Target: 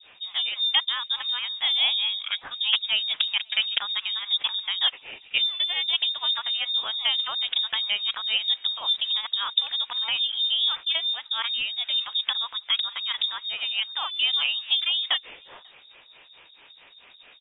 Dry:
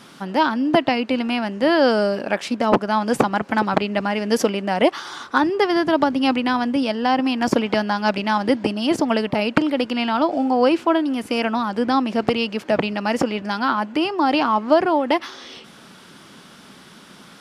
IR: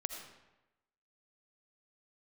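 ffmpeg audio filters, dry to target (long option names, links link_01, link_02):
-filter_complex "[0:a]acrossover=split=470[link_01][link_02];[link_01]aeval=exprs='val(0)*(1-1/2+1/2*cos(2*PI*4.6*n/s))':channel_layout=same[link_03];[link_02]aeval=exprs='val(0)*(1-1/2-1/2*cos(2*PI*4.6*n/s))':channel_layout=same[link_04];[link_03][link_04]amix=inputs=2:normalize=0,lowpass=frequency=3300:width_type=q:width=0.5098,lowpass=frequency=3300:width_type=q:width=0.6013,lowpass=frequency=3300:width_type=q:width=0.9,lowpass=frequency=3300:width_type=q:width=2.563,afreqshift=-3900,asplit=2[link_05][link_06];[link_06]adelay=542.3,volume=-29dB,highshelf=frequency=4000:gain=-12.2[link_07];[link_05][link_07]amix=inputs=2:normalize=0,volume=-2dB"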